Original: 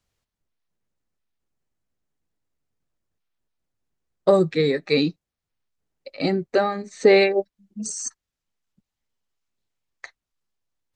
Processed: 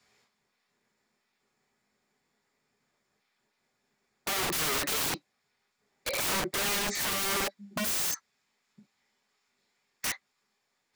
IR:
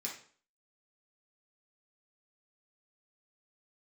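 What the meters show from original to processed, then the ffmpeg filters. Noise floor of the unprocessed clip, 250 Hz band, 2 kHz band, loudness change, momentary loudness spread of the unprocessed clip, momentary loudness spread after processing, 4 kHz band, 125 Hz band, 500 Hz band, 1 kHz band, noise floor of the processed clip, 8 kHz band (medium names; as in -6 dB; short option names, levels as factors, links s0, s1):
under -85 dBFS, -14.5 dB, -3.5 dB, -8.5 dB, 14 LU, 9 LU, 0.0 dB, -13.0 dB, -18.5 dB, -5.0 dB, -79 dBFS, +3.5 dB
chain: -filter_complex "[1:a]atrim=start_sample=2205,atrim=end_sample=3087[s0];[0:a][s0]afir=irnorm=-1:irlink=0,asplit=2[s1][s2];[s2]highpass=f=720:p=1,volume=39.8,asoftclip=type=tanh:threshold=0.891[s3];[s1][s3]amix=inputs=2:normalize=0,lowpass=f=2900:p=1,volume=0.501,aeval=exprs='(mod(6.68*val(0)+1,2)-1)/6.68':c=same,volume=0.355"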